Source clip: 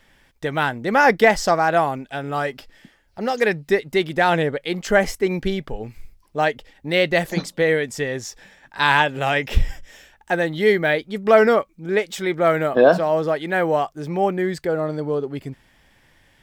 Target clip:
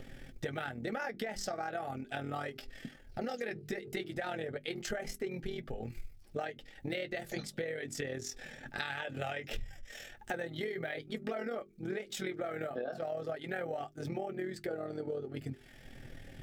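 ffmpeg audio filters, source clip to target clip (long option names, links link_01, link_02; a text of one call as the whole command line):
ffmpeg -i in.wav -filter_complex "[0:a]acrossover=split=500|5200[link_01][link_02][link_03];[link_01]acompressor=mode=upward:threshold=-36dB:ratio=2.5[link_04];[link_04][link_02][link_03]amix=inputs=3:normalize=0,asuperstop=centerf=1000:order=4:qfactor=3.3,bandreject=frequency=50:width_type=h:width=6,bandreject=frequency=100:width_type=h:width=6,bandreject=frequency=150:width_type=h:width=6,bandreject=frequency=200:width_type=h:width=6,bandreject=frequency=250:width_type=h:width=6,bandreject=frequency=300:width_type=h:width=6,bandreject=frequency=350:width_type=h:width=6,bandreject=frequency=400:width_type=h:width=6,tremolo=f=41:d=0.75,flanger=delay=7.5:depth=1.6:regen=-31:speed=0.37:shape=triangular,alimiter=limit=-17.5dB:level=0:latency=1:release=129,acompressor=threshold=-42dB:ratio=8,volume=6.5dB" out.wav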